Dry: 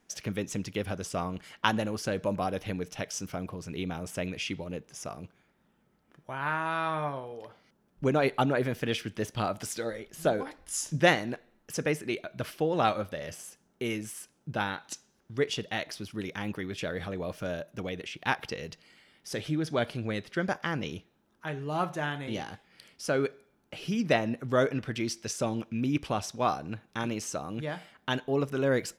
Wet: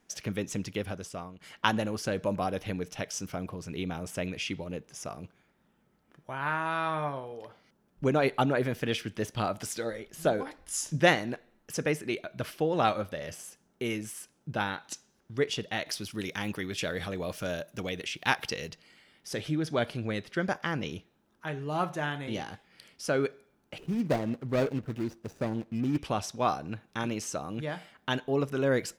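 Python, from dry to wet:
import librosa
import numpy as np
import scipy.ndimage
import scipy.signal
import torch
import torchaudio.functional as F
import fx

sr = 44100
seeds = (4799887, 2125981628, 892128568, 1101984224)

y = fx.high_shelf(x, sr, hz=2800.0, db=8.5, at=(15.86, 18.69))
y = fx.median_filter(y, sr, points=41, at=(23.78, 25.98))
y = fx.edit(y, sr, fx.fade_out_to(start_s=0.71, length_s=0.7, floor_db=-16.0), tone=tone)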